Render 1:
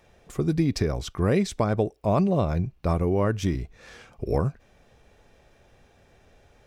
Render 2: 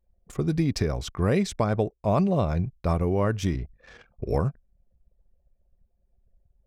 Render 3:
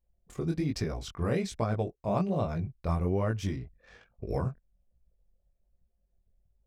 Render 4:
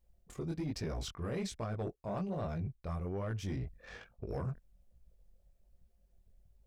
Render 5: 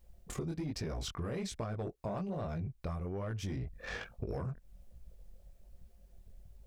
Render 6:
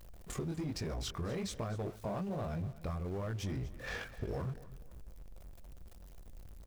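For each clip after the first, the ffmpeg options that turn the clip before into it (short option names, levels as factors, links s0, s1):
-af "anlmdn=0.0398,equalizer=f=330:t=o:w=0.77:g=-2.5"
-af "flanger=delay=17.5:depth=7.4:speed=1.2,volume=0.708"
-af "areverse,acompressor=threshold=0.01:ratio=4,areverse,asoftclip=type=tanh:threshold=0.0168,volume=1.88"
-af "acompressor=threshold=0.00562:ratio=12,volume=3.16"
-af "aeval=exprs='val(0)+0.5*0.00355*sgn(val(0))':c=same,aecho=1:1:244|488|732:0.141|0.0466|0.0154,volume=0.891"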